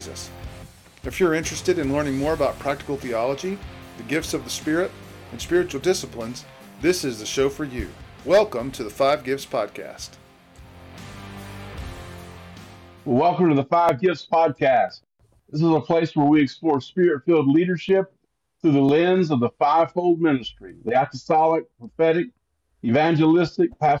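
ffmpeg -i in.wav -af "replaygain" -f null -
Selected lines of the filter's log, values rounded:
track_gain = +1.2 dB
track_peak = 0.230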